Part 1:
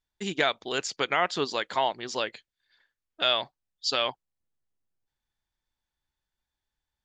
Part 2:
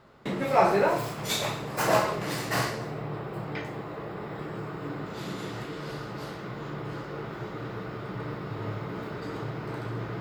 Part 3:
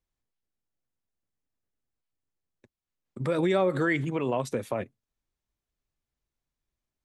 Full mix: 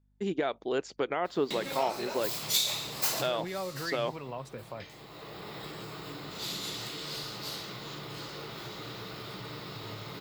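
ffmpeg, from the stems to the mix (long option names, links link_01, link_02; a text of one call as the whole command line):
ffmpeg -i stem1.wav -i stem2.wav -i stem3.wav -filter_complex "[0:a]equalizer=frequency=380:width=0.69:gain=7.5,volume=-3.5dB[link_01];[1:a]equalizer=frequency=1600:width_type=o:width=0.67:gain=-5,equalizer=frequency=4000:width_type=o:width=0.67:gain=6,equalizer=frequency=10000:width_type=o:width=0.67:gain=-5,acompressor=threshold=-33dB:ratio=4,crystalizer=i=9:c=0,adelay=1250,volume=-7dB[link_02];[2:a]equalizer=frequency=310:width_type=o:width=2.6:gain=-14,aeval=exprs='val(0)+0.000501*(sin(2*PI*50*n/s)+sin(2*PI*2*50*n/s)/2+sin(2*PI*3*50*n/s)/3+sin(2*PI*4*50*n/s)/4+sin(2*PI*5*50*n/s)/5)':channel_layout=same,volume=-1.5dB,asplit=2[link_03][link_04];[link_04]apad=whole_len=505319[link_05];[link_02][link_05]sidechaincompress=threshold=-43dB:ratio=10:attack=5.6:release=787[link_06];[link_01][link_03]amix=inputs=2:normalize=0,highshelf=frequency=2100:gain=-11.5,alimiter=limit=-19.5dB:level=0:latency=1:release=94,volume=0dB[link_07];[link_06][link_07]amix=inputs=2:normalize=0" out.wav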